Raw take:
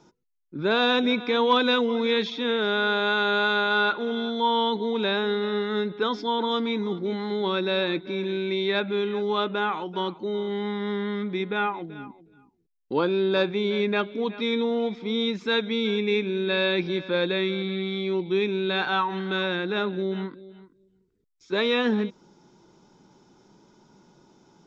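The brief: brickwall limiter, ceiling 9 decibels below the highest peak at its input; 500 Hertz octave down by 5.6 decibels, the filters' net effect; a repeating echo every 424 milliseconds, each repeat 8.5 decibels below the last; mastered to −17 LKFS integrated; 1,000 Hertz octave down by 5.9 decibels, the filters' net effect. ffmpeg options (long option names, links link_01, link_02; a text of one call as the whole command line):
ffmpeg -i in.wav -af "equalizer=frequency=500:width_type=o:gain=-6,equalizer=frequency=1000:width_type=o:gain=-6,alimiter=limit=-23.5dB:level=0:latency=1,aecho=1:1:424|848|1272|1696:0.376|0.143|0.0543|0.0206,volume=14.5dB" out.wav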